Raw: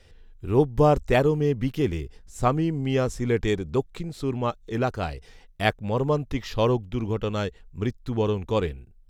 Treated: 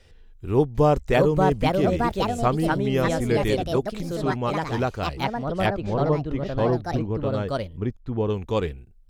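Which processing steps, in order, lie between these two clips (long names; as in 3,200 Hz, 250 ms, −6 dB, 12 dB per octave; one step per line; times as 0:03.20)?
0:05.66–0:08.30: low-pass filter 1,100 Hz 6 dB per octave
delay with pitch and tempo change per echo 750 ms, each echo +4 semitones, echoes 2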